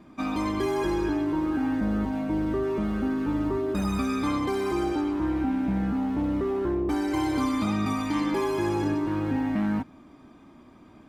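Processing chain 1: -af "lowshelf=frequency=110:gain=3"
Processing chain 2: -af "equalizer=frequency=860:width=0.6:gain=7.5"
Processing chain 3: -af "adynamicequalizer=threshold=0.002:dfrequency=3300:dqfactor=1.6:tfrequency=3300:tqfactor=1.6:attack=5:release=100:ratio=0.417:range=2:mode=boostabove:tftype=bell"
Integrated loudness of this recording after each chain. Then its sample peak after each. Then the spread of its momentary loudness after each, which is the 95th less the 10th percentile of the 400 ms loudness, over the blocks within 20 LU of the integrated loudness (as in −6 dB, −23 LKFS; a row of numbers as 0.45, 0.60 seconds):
−26.5, −24.0, −27.0 LKFS; −14.5, −11.5, −15.0 dBFS; 1, 3, 2 LU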